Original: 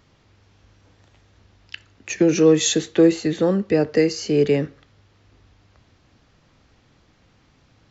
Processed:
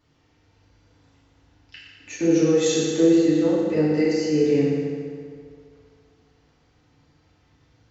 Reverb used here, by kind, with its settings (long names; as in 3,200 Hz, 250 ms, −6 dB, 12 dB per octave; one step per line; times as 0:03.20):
feedback delay network reverb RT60 2.2 s, low-frequency decay 0.9×, high-frequency decay 0.7×, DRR −9 dB
level −13 dB